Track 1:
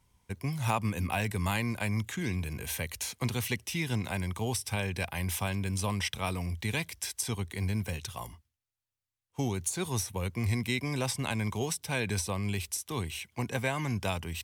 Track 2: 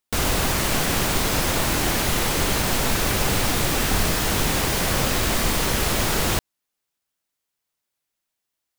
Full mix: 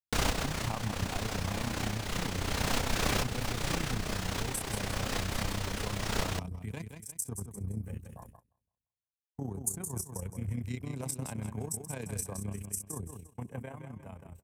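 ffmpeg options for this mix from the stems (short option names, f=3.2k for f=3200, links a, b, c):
-filter_complex "[0:a]afwtdn=0.01,firequalizer=gain_entry='entry(170,0);entry(2100,-10);entry(3700,-13);entry(7800,7)':delay=0.05:min_phase=1,volume=-3dB,afade=t=out:st=13.37:d=0.44:silence=0.421697,asplit=3[a][b][c];[b]volume=-7dB[d];[1:a]acrossover=split=8400[e][f];[f]acompressor=threshold=-38dB:ratio=4:attack=1:release=60[g];[e][g]amix=inputs=2:normalize=0,volume=-3dB[h];[c]apad=whole_len=387493[i];[h][i]sidechaincompress=threshold=-39dB:ratio=8:attack=11:release=402[j];[d]aecho=0:1:172|344|516|688|860:1|0.34|0.116|0.0393|0.0134[k];[a][j][k]amix=inputs=3:normalize=0,bandreject=f=360:w=12,agate=range=-18dB:threshold=-48dB:ratio=16:detection=peak,tremolo=f=31:d=0.667"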